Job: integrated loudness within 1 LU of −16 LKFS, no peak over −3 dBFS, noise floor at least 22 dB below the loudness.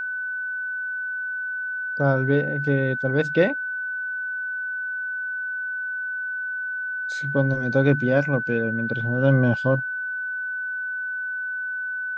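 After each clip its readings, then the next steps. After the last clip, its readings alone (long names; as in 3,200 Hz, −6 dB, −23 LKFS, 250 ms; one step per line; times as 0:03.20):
interfering tone 1,500 Hz; level of the tone −26 dBFS; integrated loudness −24.5 LKFS; sample peak −6.0 dBFS; target loudness −16.0 LKFS
→ notch filter 1,500 Hz, Q 30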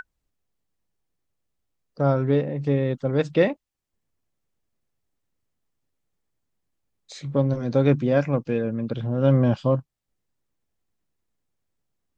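interfering tone none found; integrated loudness −23.0 LKFS; sample peak −6.5 dBFS; target loudness −16.0 LKFS
→ level +7 dB
brickwall limiter −3 dBFS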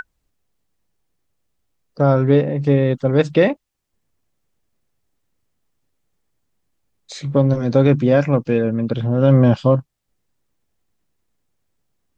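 integrated loudness −16.5 LKFS; sample peak −3.0 dBFS; background noise floor −73 dBFS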